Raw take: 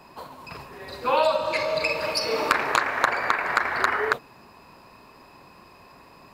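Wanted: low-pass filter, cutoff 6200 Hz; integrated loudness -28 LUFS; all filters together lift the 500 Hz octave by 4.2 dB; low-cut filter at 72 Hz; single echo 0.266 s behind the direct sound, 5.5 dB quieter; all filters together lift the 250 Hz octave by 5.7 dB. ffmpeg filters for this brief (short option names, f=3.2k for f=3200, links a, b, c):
-af "highpass=72,lowpass=6.2k,equalizer=f=250:t=o:g=6,equalizer=f=500:t=o:g=4,aecho=1:1:266:0.531,volume=-6.5dB"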